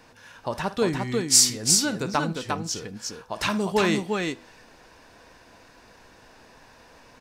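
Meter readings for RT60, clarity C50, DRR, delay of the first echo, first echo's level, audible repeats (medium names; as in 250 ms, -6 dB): no reverb, no reverb, no reverb, 55 ms, -15.0 dB, 2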